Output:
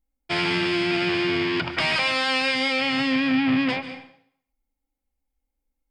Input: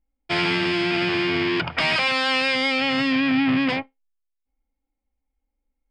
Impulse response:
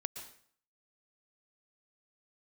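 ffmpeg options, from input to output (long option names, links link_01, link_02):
-filter_complex "[0:a]asplit=2[link_01][link_02];[1:a]atrim=start_sample=2205,asetrate=37044,aresample=44100,highshelf=frequency=7500:gain=11[link_03];[link_02][link_03]afir=irnorm=-1:irlink=0,volume=1.5dB[link_04];[link_01][link_04]amix=inputs=2:normalize=0,volume=-8.5dB"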